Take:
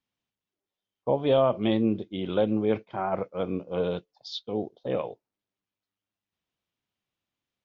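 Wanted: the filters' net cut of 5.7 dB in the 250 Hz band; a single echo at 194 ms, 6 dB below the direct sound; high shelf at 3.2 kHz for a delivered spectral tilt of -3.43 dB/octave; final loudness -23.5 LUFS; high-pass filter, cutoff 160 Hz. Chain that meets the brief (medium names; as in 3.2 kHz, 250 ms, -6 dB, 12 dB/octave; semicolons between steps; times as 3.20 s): high-pass 160 Hz; peaking EQ 250 Hz -6.5 dB; treble shelf 3.2 kHz +7.5 dB; delay 194 ms -6 dB; trim +5.5 dB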